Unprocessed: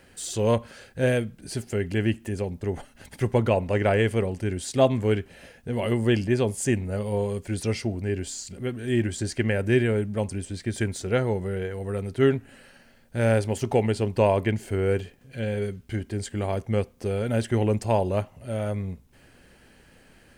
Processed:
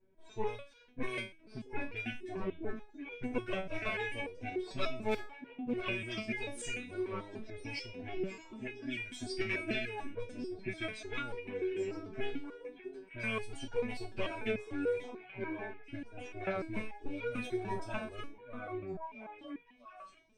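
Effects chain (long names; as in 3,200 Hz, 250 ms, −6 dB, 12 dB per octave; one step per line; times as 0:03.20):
lower of the sound and its delayed copy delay 8.4 ms
noise reduction from a noise print of the clip's start 13 dB
low-pass that shuts in the quiet parts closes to 500 Hz, open at −22.5 dBFS
EQ curve with evenly spaced ripples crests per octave 1.6, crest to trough 7 dB
downward compressor 6 to 1, threshold −34 dBFS, peak gain reduction 17 dB
flat-topped bell 4,100 Hz +9.5 dB 2.4 octaves
0:05.08–0:05.75: hard clipping −35 dBFS, distortion −26 dB
on a send: echo through a band-pass that steps 660 ms, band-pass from 330 Hz, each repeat 1.4 octaves, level −5 dB
on the sum: step-sequenced resonator 6.8 Hz 190–480 Hz
level +14.5 dB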